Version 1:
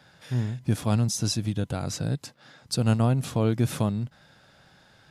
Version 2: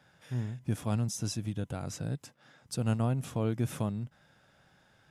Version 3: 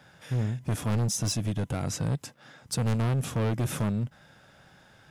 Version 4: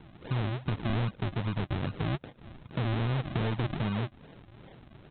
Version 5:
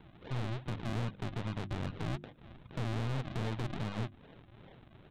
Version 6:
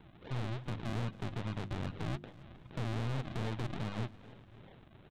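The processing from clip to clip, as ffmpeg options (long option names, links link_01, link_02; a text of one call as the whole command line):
ffmpeg -i in.wav -af "equalizer=frequency=4300:width=3.2:gain=-7.5,volume=-7dB" out.wav
ffmpeg -i in.wav -af "asoftclip=type=hard:threshold=-31.5dB,volume=8dB" out.wav
ffmpeg -i in.wav -af "acompressor=threshold=-33dB:ratio=6,aresample=8000,acrusher=samples=12:mix=1:aa=0.000001:lfo=1:lforange=12:lforate=2.5,aresample=44100,volume=4.5dB" out.wav
ffmpeg -i in.wav -af "aeval=exprs='(tanh(39.8*val(0)+0.7)-tanh(0.7))/39.8':channel_layout=same,bandreject=frequency=50:width_type=h:width=6,bandreject=frequency=100:width_type=h:width=6,bandreject=frequency=150:width_type=h:width=6,bandreject=frequency=200:width_type=h:width=6,bandreject=frequency=250:width_type=h:width=6,bandreject=frequency=300:width_type=h:width=6,bandreject=frequency=350:width_type=h:width=6" out.wav
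ffmpeg -i in.wav -af "aecho=1:1:274|548|822:0.1|0.043|0.0185,volume=-1dB" out.wav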